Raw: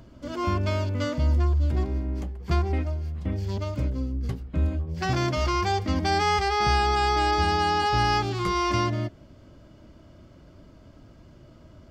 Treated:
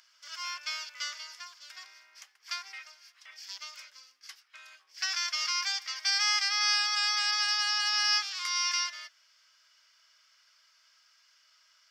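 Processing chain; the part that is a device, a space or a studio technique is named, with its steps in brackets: headphones lying on a table (HPF 1500 Hz 24 dB/oct; bell 5400 Hz +11.5 dB 0.39 oct)

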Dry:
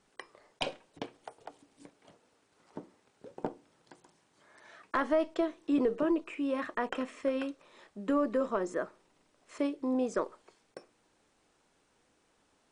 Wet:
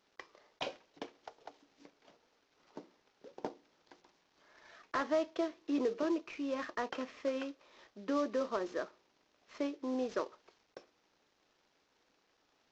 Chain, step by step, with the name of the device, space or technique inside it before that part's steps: early wireless headset (HPF 240 Hz 12 dB/oct; CVSD 32 kbps); gain -3.5 dB

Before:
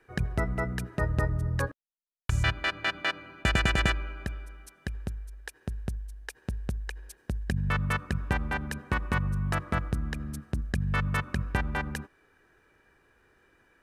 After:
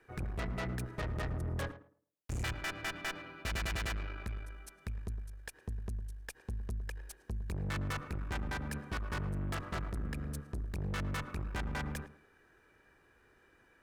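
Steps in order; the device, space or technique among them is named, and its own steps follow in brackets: rockabilly slapback (tube stage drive 35 dB, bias 0.6; tape echo 0.109 s, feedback 29%, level -10.5 dB, low-pass 1100 Hz); gain +1 dB

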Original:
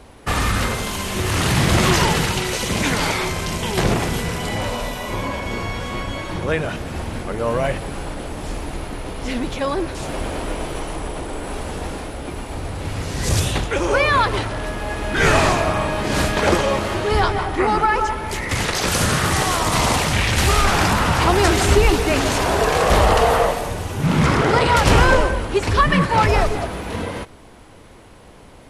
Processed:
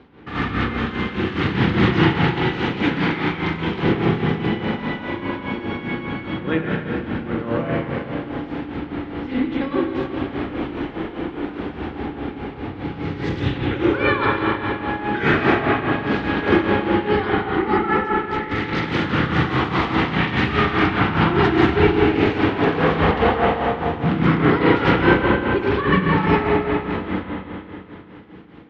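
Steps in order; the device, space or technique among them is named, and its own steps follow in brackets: combo amplifier with spring reverb and tremolo (spring tank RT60 3 s, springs 31/37/43 ms, chirp 55 ms, DRR -3.5 dB; tremolo 4.9 Hz, depth 65%; speaker cabinet 100–3400 Hz, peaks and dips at 220 Hz +4 dB, 310 Hz +8 dB, 620 Hz -10 dB, 1000 Hz -4 dB, 2600 Hz -3 dB); gain -2 dB

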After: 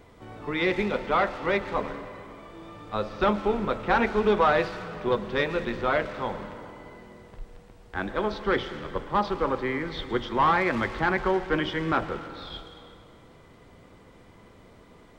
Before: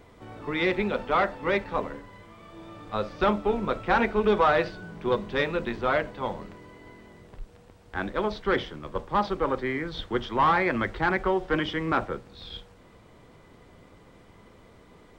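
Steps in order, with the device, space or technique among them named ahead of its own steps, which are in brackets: saturated reverb return (on a send at -7.5 dB: reverb RT60 2.2 s, pre-delay 0.101 s + soft clip -28 dBFS, distortion -8 dB)

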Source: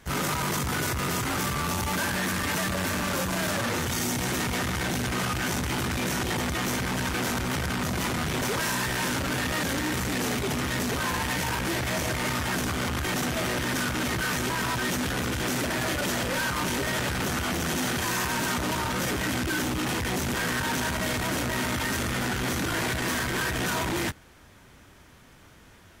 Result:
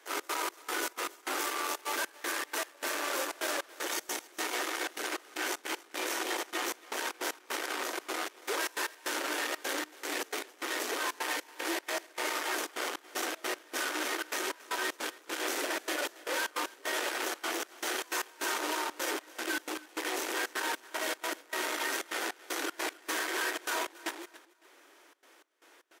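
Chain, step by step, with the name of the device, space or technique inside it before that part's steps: steep high-pass 300 Hz 72 dB/oct; echo 0.258 s -11 dB; trance gate with a delay (step gate "xx.xx..xx.x..xxx" 154 bpm -24 dB; feedback echo 0.278 s, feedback 36%, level -21 dB); gain -4 dB

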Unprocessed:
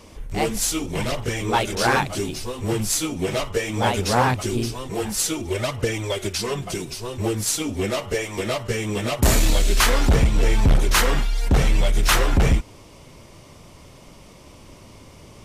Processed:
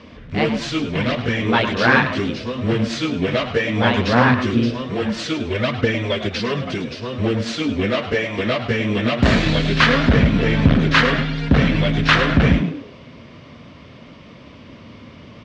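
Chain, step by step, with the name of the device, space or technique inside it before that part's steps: frequency-shifting delay pedal into a guitar cabinet (frequency-shifting echo 0.104 s, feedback 33%, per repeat +120 Hz, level -11 dB; speaker cabinet 83–4000 Hz, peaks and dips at 240 Hz +6 dB, 370 Hz -5 dB, 830 Hz -8 dB, 1700 Hz +4 dB); gain +5 dB

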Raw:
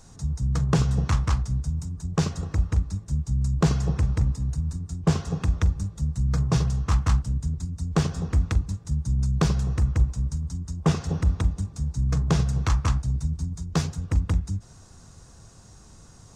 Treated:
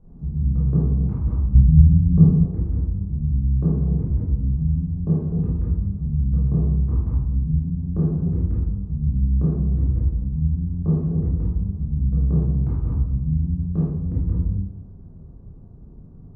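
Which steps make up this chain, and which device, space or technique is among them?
television next door (compressor, threshold -24 dBFS, peak gain reduction 9.5 dB; LPF 350 Hz 12 dB/oct; reverb RT60 0.80 s, pre-delay 17 ms, DRR -7.5 dB); 1.55–2.46 tone controls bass +10 dB, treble +13 dB; gain -1.5 dB

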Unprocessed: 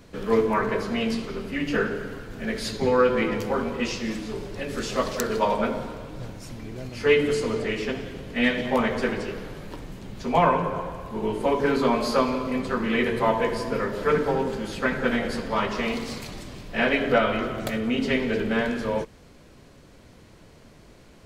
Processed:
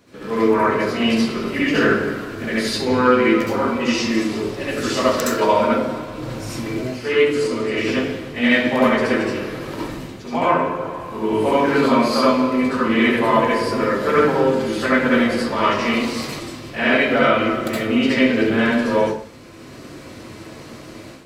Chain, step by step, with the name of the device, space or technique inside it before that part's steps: far laptop microphone (reverb RT60 0.40 s, pre-delay 63 ms, DRR -6.5 dB; HPF 190 Hz 6 dB/oct; AGC); gain -3 dB

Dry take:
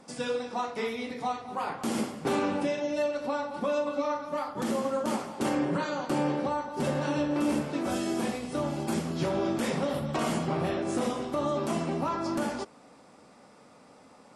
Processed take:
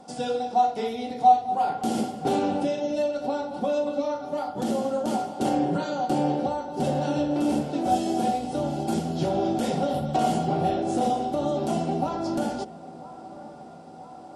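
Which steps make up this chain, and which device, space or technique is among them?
band shelf 1700 Hz -8.5 dB 1.3 oct; dark delay 0.99 s, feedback 66%, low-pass 1900 Hz, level -20 dB; dynamic EQ 1100 Hz, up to -6 dB, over -49 dBFS, Q 1.5; inside a helmet (high shelf 5600 Hz -4.5 dB; small resonant body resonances 750/1400 Hz, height 17 dB, ringing for 95 ms); gain +3.5 dB

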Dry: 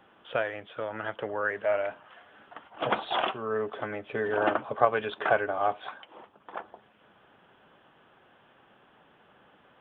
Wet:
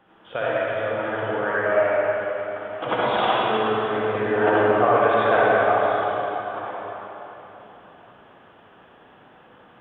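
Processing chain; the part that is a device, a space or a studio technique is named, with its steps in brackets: swimming-pool hall (reverb RT60 3.7 s, pre-delay 53 ms, DRR -9 dB; high shelf 3600 Hz -6 dB)

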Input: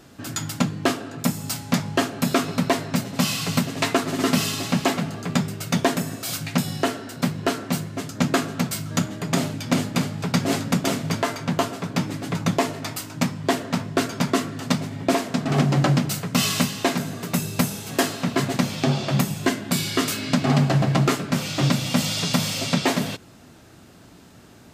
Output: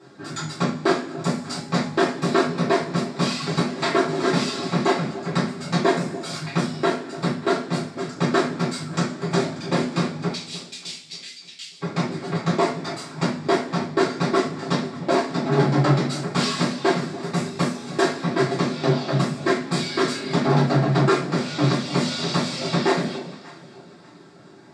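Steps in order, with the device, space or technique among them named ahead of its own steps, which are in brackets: full-range speaker at full volume (Doppler distortion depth 0.35 ms; speaker cabinet 190–7100 Hz, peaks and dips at 330 Hz +5 dB, 2900 Hz -9 dB, 6300 Hz -9 dB); reverb removal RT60 0.57 s; 10.29–11.81 steep high-pass 2600 Hz 36 dB/oct; echo with dull and thin repeats by turns 0.294 s, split 820 Hz, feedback 54%, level -14 dB; two-slope reverb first 0.38 s, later 1.6 s, from -18 dB, DRR -9 dB; gain -6.5 dB

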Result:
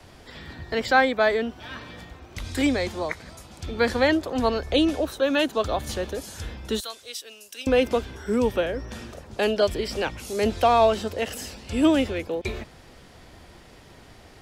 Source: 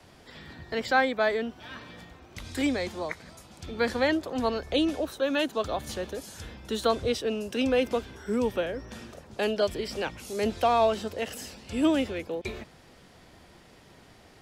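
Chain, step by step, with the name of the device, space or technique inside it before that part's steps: 6.8–7.67 differentiator; low shelf boost with a cut just above (low shelf 94 Hz +7 dB; bell 170 Hz -3 dB 0.87 oct); gain +4.5 dB

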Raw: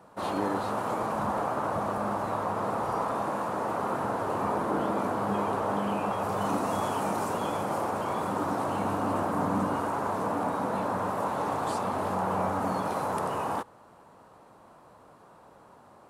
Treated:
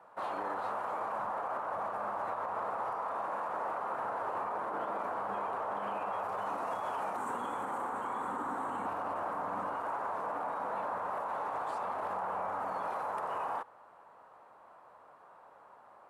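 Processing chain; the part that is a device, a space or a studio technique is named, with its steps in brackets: 7.16–8.86 thirty-one-band EQ 250 Hz +12 dB, 630 Hz -9 dB, 2500 Hz -5 dB, 5000 Hz -10 dB, 8000 Hz +9 dB; DJ mixer with the lows and highs turned down (three-band isolator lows -17 dB, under 540 Hz, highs -14 dB, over 2400 Hz; limiter -28 dBFS, peak gain reduction 8.5 dB)

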